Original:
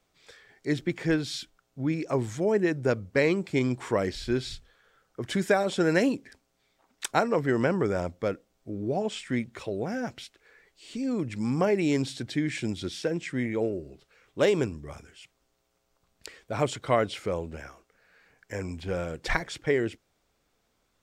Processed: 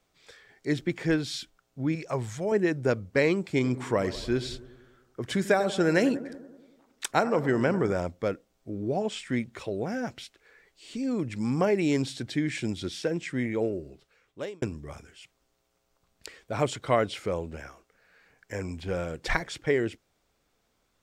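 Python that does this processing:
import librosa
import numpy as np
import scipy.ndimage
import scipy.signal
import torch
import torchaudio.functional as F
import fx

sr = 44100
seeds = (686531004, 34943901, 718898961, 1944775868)

y = fx.peak_eq(x, sr, hz=300.0, db=-12.0, octaves=0.77, at=(1.95, 2.52))
y = fx.echo_bbd(y, sr, ms=95, stages=1024, feedback_pct=61, wet_db=-14.5, at=(3.62, 7.92), fade=0.02)
y = fx.edit(y, sr, fx.fade_out_span(start_s=13.86, length_s=0.76), tone=tone)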